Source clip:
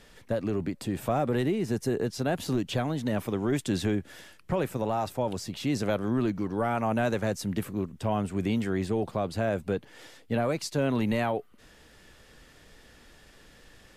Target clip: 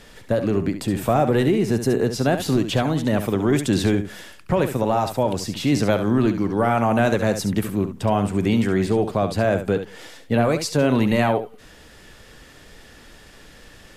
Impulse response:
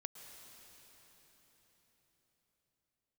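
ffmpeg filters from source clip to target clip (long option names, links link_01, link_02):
-filter_complex "[0:a]asplit=2[link_01][link_02];[1:a]atrim=start_sample=2205,afade=type=out:start_time=0.16:duration=0.01,atrim=end_sample=7497,adelay=69[link_03];[link_02][link_03]afir=irnorm=-1:irlink=0,volume=-4.5dB[link_04];[link_01][link_04]amix=inputs=2:normalize=0,volume=8dB"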